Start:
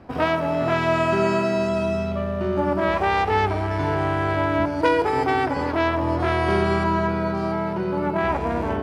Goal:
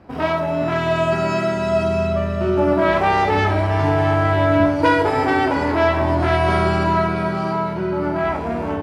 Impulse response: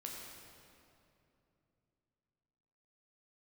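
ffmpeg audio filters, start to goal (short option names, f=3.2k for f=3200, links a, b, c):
-filter_complex "[0:a]dynaudnorm=f=200:g=17:m=5.5dB,aecho=1:1:662:0.266[a];[1:a]atrim=start_sample=2205,atrim=end_sample=3528[b];[a][b]afir=irnorm=-1:irlink=0,volume=4.5dB"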